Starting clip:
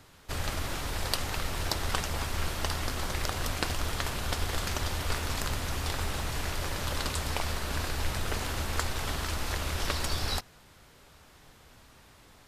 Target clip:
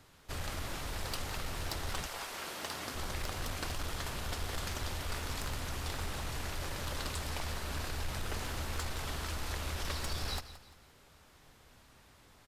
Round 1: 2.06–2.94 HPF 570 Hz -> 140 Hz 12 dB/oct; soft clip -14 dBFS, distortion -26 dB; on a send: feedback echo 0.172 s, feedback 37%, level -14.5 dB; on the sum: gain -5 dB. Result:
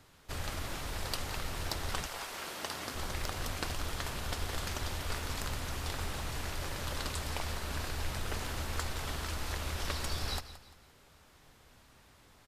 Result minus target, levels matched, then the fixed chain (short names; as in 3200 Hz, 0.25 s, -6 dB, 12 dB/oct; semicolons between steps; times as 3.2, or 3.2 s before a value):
soft clip: distortion -10 dB
2.06–2.94 HPF 570 Hz -> 140 Hz 12 dB/oct; soft clip -23 dBFS, distortion -17 dB; on a send: feedback echo 0.172 s, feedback 37%, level -14.5 dB; on the sum: gain -5 dB